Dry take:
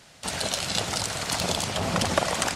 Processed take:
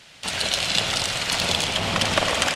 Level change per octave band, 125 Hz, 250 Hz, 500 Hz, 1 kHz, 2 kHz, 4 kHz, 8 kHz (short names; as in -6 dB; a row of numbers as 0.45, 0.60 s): +0.5, 0.0, +1.5, +2.0, +6.5, +7.0, +1.5 dB